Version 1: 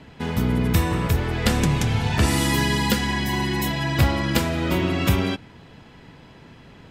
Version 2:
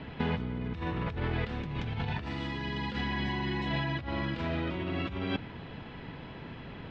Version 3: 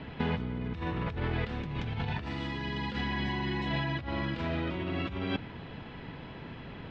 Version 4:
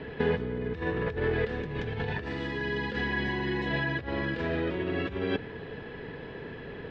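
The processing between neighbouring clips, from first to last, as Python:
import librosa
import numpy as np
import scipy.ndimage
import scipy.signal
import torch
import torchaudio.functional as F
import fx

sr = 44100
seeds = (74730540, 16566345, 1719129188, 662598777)

y1 = fx.over_compress(x, sr, threshold_db=-29.0, ratio=-1.0)
y1 = scipy.signal.sosfilt(scipy.signal.butter(4, 3800.0, 'lowpass', fs=sr, output='sos'), y1)
y1 = y1 * 10.0 ** (-4.5 / 20.0)
y2 = y1
y3 = fx.small_body(y2, sr, hz=(440.0, 1700.0), ring_ms=30, db=14)
y3 = y3 * 10.0 ** (-1.0 / 20.0)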